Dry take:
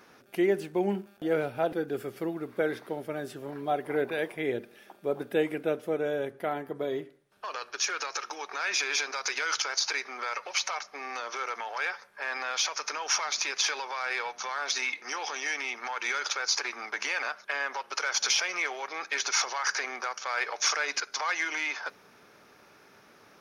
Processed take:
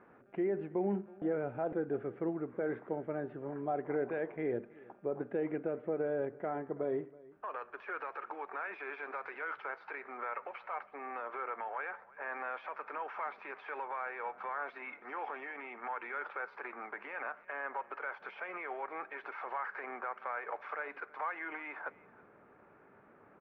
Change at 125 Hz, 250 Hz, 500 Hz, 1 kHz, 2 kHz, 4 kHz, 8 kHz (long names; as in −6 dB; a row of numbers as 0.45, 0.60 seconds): −3.5 dB, −4.5 dB, −5.5 dB, −5.5 dB, −11.0 dB, below −30 dB, below −40 dB